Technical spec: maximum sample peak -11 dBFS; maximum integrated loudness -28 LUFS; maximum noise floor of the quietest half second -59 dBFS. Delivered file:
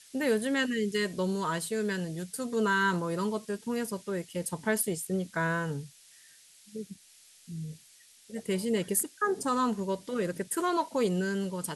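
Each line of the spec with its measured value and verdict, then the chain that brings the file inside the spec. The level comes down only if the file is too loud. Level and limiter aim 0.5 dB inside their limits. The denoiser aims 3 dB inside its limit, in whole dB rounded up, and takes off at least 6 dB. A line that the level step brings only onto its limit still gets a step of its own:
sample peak -11.5 dBFS: pass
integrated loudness -30.5 LUFS: pass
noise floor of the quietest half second -58 dBFS: fail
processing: noise reduction 6 dB, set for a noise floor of -58 dBFS

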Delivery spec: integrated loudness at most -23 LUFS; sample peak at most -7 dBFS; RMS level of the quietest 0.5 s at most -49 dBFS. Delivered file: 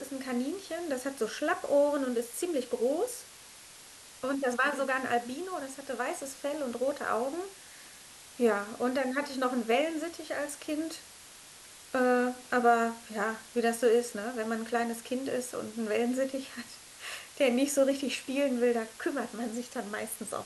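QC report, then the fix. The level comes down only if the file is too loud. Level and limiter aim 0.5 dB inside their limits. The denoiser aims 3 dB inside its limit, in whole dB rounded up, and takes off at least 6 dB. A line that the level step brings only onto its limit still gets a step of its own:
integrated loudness -31.0 LUFS: pass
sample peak -13.0 dBFS: pass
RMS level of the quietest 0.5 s -51 dBFS: pass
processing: none needed

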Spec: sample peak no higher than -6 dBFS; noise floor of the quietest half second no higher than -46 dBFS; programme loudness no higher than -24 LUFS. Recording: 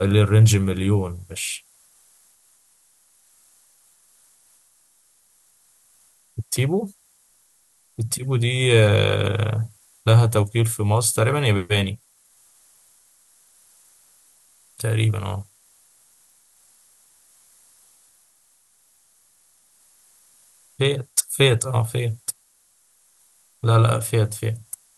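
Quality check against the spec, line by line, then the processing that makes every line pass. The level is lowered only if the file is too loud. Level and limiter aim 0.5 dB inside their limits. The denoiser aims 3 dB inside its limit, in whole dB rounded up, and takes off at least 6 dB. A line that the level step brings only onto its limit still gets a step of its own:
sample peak -4.0 dBFS: fail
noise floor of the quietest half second -61 dBFS: pass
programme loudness -21.0 LUFS: fail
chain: trim -3.5 dB

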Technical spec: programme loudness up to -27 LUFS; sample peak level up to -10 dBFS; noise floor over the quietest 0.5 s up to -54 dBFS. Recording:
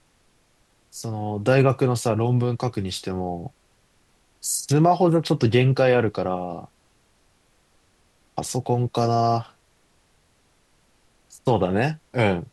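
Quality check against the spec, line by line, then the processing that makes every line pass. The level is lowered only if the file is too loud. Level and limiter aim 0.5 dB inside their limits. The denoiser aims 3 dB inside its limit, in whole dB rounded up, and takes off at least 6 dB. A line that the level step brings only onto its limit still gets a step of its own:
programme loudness -22.5 LUFS: fail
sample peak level -5.5 dBFS: fail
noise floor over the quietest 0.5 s -63 dBFS: pass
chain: trim -5 dB

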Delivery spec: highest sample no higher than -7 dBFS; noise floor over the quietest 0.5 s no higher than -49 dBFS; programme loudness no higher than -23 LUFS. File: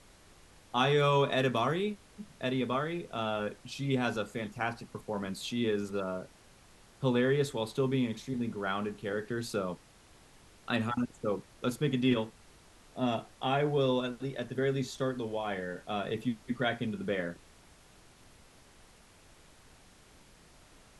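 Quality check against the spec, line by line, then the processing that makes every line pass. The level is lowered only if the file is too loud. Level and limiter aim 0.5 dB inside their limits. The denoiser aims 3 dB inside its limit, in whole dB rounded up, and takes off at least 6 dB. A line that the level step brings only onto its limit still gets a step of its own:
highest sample -14.0 dBFS: pass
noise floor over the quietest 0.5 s -59 dBFS: pass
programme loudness -32.5 LUFS: pass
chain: none needed

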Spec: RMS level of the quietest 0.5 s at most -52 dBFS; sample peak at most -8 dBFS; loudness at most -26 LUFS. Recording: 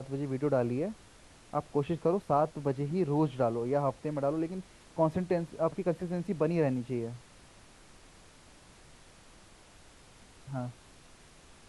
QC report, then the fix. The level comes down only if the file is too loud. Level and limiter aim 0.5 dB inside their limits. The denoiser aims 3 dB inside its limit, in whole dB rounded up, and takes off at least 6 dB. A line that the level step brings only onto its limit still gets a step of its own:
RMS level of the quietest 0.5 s -56 dBFS: pass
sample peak -15.5 dBFS: pass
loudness -32.0 LUFS: pass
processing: none needed

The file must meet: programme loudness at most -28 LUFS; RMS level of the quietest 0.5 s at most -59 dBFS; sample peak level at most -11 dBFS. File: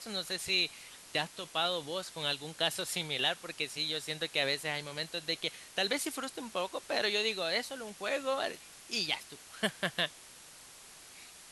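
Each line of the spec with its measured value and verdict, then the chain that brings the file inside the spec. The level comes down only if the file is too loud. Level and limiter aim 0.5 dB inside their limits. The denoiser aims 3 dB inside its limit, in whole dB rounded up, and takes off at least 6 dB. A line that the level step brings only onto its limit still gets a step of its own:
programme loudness -33.5 LUFS: pass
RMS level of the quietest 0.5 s -53 dBFS: fail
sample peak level -15.5 dBFS: pass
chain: noise reduction 9 dB, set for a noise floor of -53 dBFS

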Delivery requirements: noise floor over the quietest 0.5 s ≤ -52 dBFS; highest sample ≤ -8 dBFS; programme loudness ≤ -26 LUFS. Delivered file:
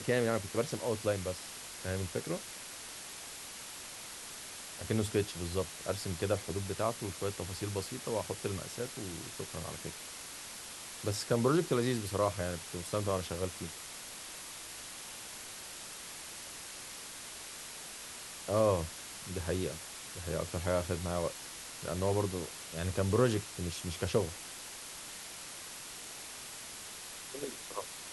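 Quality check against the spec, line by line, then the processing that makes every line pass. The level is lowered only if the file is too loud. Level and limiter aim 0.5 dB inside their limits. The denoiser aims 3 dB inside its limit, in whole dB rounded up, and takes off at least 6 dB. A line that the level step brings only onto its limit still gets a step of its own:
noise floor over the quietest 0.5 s -46 dBFS: fail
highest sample -15.5 dBFS: pass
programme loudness -37.0 LUFS: pass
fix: noise reduction 9 dB, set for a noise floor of -46 dBFS

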